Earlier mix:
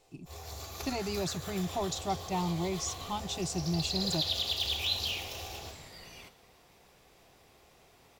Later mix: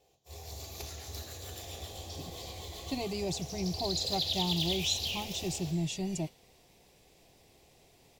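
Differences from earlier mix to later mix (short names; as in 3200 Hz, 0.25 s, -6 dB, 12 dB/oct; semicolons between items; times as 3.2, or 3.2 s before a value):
speech: entry +2.05 s; master: add bell 1300 Hz -12.5 dB 0.86 oct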